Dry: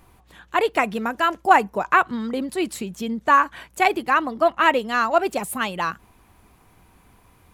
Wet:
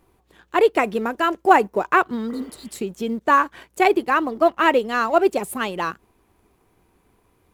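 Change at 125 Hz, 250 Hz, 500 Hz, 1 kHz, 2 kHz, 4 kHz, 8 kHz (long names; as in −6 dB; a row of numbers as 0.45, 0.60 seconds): can't be measured, +2.5 dB, +4.0 dB, 0.0 dB, −1.0 dB, −1.5 dB, −2.0 dB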